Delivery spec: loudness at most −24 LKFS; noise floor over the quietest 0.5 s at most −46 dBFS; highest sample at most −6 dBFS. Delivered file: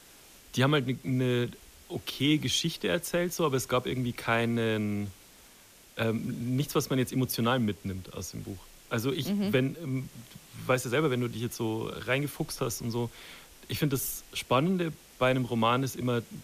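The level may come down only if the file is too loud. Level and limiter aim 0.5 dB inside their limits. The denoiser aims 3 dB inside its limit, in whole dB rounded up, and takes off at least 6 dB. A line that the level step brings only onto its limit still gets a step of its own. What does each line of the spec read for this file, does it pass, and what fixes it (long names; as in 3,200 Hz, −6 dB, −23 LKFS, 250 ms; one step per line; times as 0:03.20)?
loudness −30.0 LKFS: in spec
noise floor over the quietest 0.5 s −55 dBFS: in spec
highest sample −12.5 dBFS: in spec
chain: no processing needed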